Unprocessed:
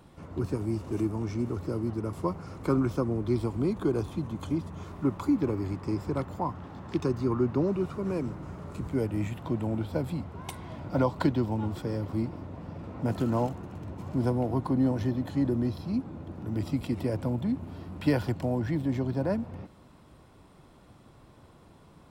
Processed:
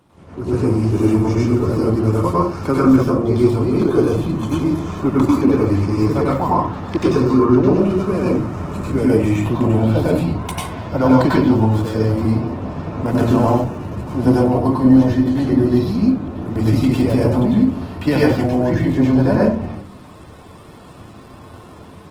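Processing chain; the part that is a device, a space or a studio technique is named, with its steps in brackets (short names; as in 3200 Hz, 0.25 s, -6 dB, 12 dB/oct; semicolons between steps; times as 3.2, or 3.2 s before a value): far-field microphone of a smart speaker (reverb RT60 0.40 s, pre-delay 90 ms, DRR -5.5 dB; HPF 130 Hz 6 dB/oct; AGC gain up to 10.5 dB; Opus 16 kbps 48000 Hz)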